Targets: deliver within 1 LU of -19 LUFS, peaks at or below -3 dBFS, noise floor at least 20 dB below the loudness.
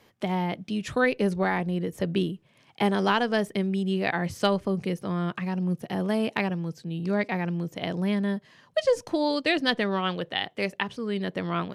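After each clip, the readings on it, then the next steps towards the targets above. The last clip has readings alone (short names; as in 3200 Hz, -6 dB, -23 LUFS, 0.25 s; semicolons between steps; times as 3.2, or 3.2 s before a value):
loudness -27.5 LUFS; peak -9.5 dBFS; loudness target -19.0 LUFS
-> gain +8.5 dB; limiter -3 dBFS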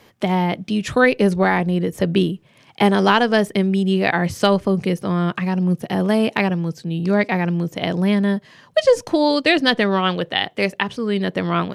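loudness -19.0 LUFS; peak -3.0 dBFS; noise floor -53 dBFS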